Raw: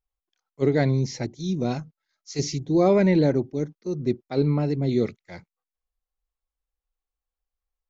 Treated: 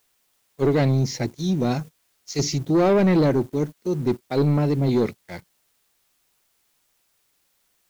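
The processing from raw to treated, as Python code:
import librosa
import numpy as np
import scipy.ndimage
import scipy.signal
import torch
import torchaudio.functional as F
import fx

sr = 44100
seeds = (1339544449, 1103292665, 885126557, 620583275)

p1 = fx.quant_dither(x, sr, seeds[0], bits=8, dither='triangular')
p2 = x + (p1 * librosa.db_to_amplitude(-11.0))
p3 = fx.leveller(p2, sr, passes=2)
y = p3 * librosa.db_to_amplitude(-5.0)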